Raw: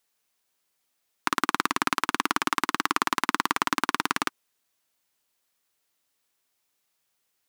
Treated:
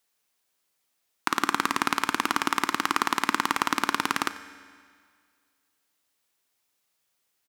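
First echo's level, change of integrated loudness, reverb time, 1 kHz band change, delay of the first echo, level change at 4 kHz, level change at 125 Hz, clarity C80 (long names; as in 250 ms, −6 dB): −20.5 dB, +0.5 dB, 2.0 s, +0.5 dB, 91 ms, +0.5 dB, 0.0 dB, 13.5 dB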